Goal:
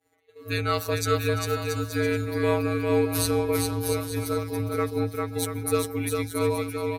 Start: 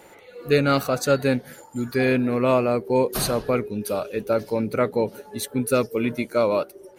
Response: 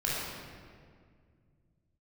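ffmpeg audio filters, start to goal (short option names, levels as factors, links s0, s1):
-filter_complex "[0:a]afftfilt=real='hypot(re,im)*cos(PI*b)':imag='0':win_size=1024:overlap=0.75,afreqshift=-65,agate=range=0.0224:threshold=0.0112:ratio=3:detection=peak,highshelf=f=4900:g=5,asplit=2[s0][s1];[s1]aecho=0:1:400|680|876|1013|1109:0.631|0.398|0.251|0.158|0.1[s2];[s0][s2]amix=inputs=2:normalize=0,volume=0.841"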